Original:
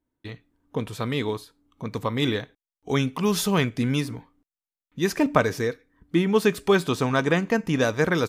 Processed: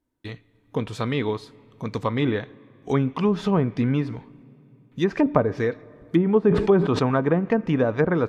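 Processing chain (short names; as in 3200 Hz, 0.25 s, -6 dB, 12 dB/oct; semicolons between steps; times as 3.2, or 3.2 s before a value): treble ducked by the level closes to 780 Hz, closed at -16.5 dBFS; on a send at -24 dB: reverb RT60 3.2 s, pre-delay 81 ms; 6.44–7.11 on the sum: sustainer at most 65 dB/s; gain +2 dB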